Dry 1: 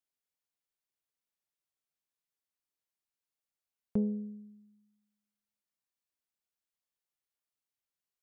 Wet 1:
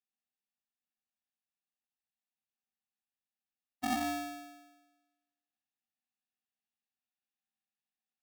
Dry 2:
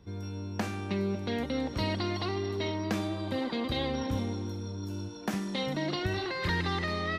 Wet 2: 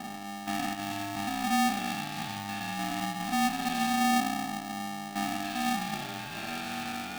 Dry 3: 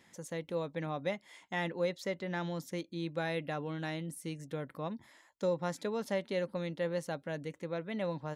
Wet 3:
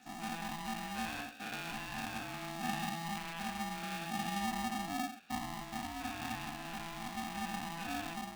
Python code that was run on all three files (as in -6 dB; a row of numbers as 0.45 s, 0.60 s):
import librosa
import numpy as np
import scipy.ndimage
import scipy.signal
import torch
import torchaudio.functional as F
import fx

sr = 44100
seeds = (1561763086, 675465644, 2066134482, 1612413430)

p1 = fx.spec_dilate(x, sr, span_ms=240)
p2 = fx.peak_eq(p1, sr, hz=280.0, db=2.5, octaves=0.77)
p3 = fx.rider(p2, sr, range_db=4, speed_s=0.5)
p4 = fx.vowel_filter(p3, sr, vowel='i')
p5 = p4 + fx.echo_single(p4, sr, ms=87, db=-11.0, dry=0)
p6 = p5 * np.sign(np.sin(2.0 * np.pi * 500.0 * np.arange(len(p5)) / sr))
y = F.gain(torch.from_numpy(p6), 4.0).numpy()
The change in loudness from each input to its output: -0.5 LU, +1.5 LU, -2.5 LU